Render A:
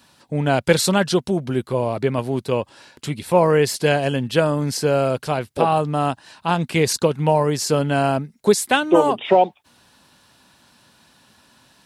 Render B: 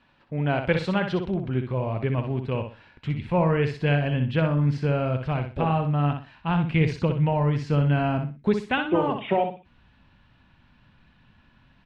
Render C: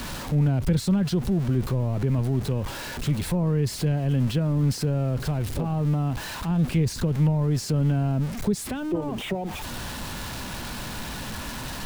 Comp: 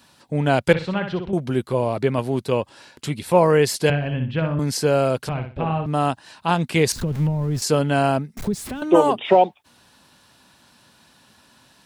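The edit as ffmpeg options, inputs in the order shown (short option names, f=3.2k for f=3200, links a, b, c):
-filter_complex "[1:a]asplit=3[a][b][c];[2:a]asplit=2[d][e];[0:a]asplit=6[f][g][h][i][j][k];[f]atrim=end=0.732[l];[a]atrim=start=0.728:end=1.332[m];[g]atrim=start=1.328:end=3.902[n];[b]atrim=start=3.898:end=4.592[o];[h]atrim=start=4.588:end=5.292[p];[c]atrim=start=5.288:end=5.862[q];[i]atrim=start=5.858:end=6.922[r];[d]atrim=start=6.918:end=7.622[s];[j]atrim=start=7.618:end=8.372[t];[e]atrim=start=8.368:end=8.822[u];[k]atrim=start=8.818[v];[l][m]acrossfade=d=0.004:c1=hsin:c2=hsin[w];[w][n]acrossfade=d=0.004:c1=hsin:c2=hsin[x];[x][o]acrossfade=d=0.004:c1=hsin:c2=hsin[y];[y][p]acrossfade=d=0.004:c1=hsin:c2=hsin[z];[z][q]acrossfade=d=0.004:c1=hsin:c2=hsin[aa];[aa][r]acrossfade=d=0.004:c1=hsin:c2=hsin[ab];[ab][s]acrossfade=d=0.004:c1=hsin:c2=hsin[ac];[ac][t]acrossfade=d=0.004:c1=hsin:c2=hsin[ad];[ad][u]acrossfade=d=0.004:c1=hsin:c2=hsin[ae];[ae][v]acrossfade=d=0.004:c1=hsin:c2=hsin"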